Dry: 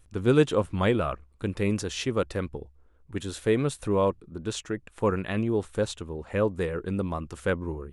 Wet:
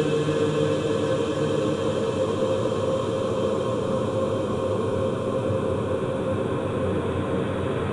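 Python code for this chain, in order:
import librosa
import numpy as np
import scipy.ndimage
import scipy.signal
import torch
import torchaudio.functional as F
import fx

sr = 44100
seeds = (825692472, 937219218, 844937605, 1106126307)

p1 = x + fx.echo_single(x, sr, ms=383, db=-8.5, dry=0)
y = fx.paulstretch(p1, sr, seeds[0], factor=34.0, window_s=0.5, from_s=0.49)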